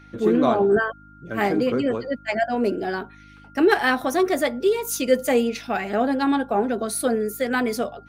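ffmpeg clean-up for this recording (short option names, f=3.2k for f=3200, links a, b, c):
-af "bandreject=f=51.2:t=h:w=4,bandreject=f=102.4:t=h:w=4,bandreject=f=153.6:t=h:w=4,bandreject=f=204.8:t=h:w=4,bandreject=f=256:t=h:w=4,bandreject=f=307.2:t=h:w=4,bandreject=f=1.4k:w=30"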